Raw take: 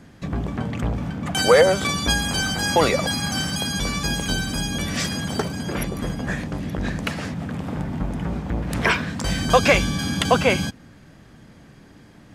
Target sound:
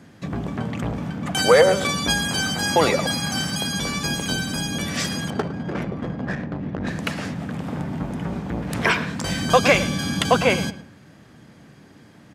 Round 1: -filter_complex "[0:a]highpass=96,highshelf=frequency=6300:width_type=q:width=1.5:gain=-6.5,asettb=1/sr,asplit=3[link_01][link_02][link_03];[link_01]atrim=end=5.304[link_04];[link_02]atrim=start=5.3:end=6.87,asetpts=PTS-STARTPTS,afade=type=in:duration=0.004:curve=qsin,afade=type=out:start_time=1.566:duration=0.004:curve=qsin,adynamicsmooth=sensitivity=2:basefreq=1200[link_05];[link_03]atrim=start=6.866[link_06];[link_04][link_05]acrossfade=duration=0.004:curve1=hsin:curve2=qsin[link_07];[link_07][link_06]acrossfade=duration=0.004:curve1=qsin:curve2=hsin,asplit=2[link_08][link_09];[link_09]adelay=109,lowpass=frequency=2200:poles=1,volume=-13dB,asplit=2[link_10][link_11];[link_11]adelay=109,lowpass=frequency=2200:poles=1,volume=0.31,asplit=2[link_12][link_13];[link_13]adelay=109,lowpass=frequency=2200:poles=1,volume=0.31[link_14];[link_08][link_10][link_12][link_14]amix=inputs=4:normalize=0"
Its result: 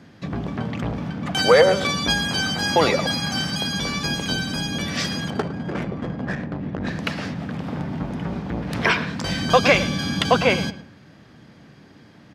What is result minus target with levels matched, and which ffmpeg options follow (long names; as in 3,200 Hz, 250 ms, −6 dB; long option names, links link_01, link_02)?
8,000 Hz band −4.5 dB
-filter_complex "[0:a]highpass=96,asettb=1/sr,asplit=3[link_01][link_02][link_03];[link_01]atrim=end=5.304[link_04];[link_02]atrim=start=5.3:end=6.87,asetpts=PTS-STARTPTS,afade=type=in:duration=0.004:curve=qsin,afade=type=out:start_time=1.566:duration=0.004:curve=qsin,adynamicsmooth=sensitivity=2:basefreq=1200[link_05];[link_03]atrim=start=6.866[link_06];[link_04][link_05]acrossfade=duration=0.004:curve1=hsin:curve2=qsin[link_07];[link_07][link_06]acrossfade=duration=0.004:curve1=qsin:curve2=hsin,asplit=2[link_08][link_09];[link_09]adelay=109,lowpass=frequency=2200:poles=1,volume=-13dB,asplit=2[link_10][link_11];[link_11]adelay=109,lowpass=frequency=2200:poles=1,volume=0.31,asplit=2[link_12][link_13];[link_13]adelay=109,lowpass=frequency=2200:poles=1,volume=0.31[link_14];[link_08][link_10][link_12][link_14]amix=inputs=4:normalize=0"